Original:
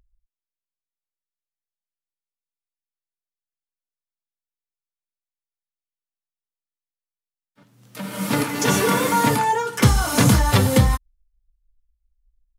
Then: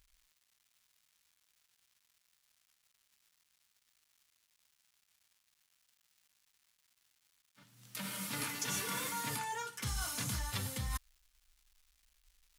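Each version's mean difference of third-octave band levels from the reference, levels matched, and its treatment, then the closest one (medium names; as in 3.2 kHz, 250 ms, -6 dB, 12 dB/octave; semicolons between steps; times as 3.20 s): 6.0 dB: reverse; compression 6:1, threshold -29 dBFS, peak gain reduction 18 dB; reverse; crackle 510 per s -57 dBFS; amplifier tone stack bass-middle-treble 5-5-5; trim +6 dB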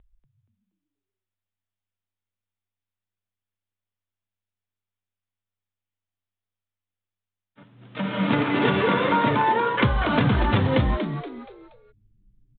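11.5 dB: steep low-pass 3.7 kHz 96 dB/octave; compression, threshold -22 dBFS, peak gain reduction 12.5 dB; frequency-shifting echo 237 ms, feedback 36%, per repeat +93 Hz, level -8 dB; trim +4 dB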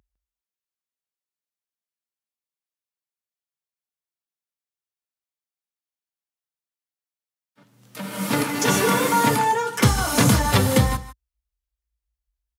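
1.5 dB: high-pass 56 Hz 24 dB/octave; bass shelf 190 Hz -3.5 dB; on a send: delay 155 ms -15 dB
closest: third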